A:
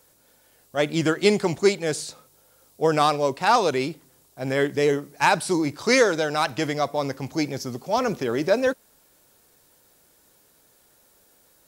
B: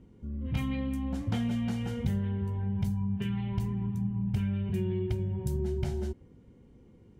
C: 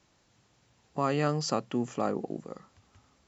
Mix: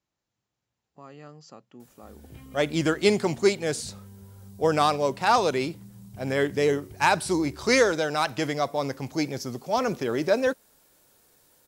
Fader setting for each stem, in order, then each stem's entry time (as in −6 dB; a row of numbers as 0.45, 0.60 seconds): −2.0, −15.5, −18.0 decibels; 1.80, 1.80, 0.00 seconds